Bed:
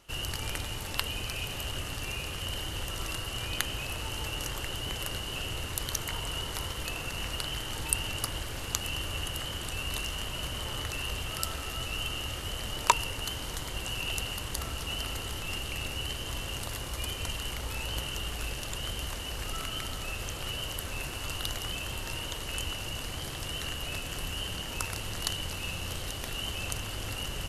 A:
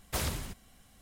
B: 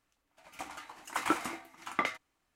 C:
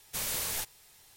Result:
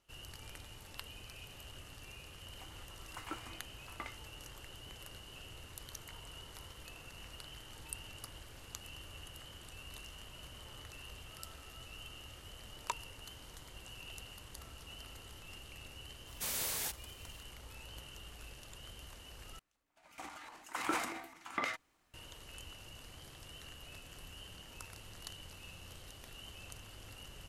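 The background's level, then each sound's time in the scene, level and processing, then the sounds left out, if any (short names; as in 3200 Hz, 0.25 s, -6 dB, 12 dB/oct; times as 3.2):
bed -16 dB
2.01 add B -15 dB
16.27 add C -4 dB + HPF 150 Hz
19.59 replace with B -7 dB + transient shaper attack 0 dB, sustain +11 dB
not used: A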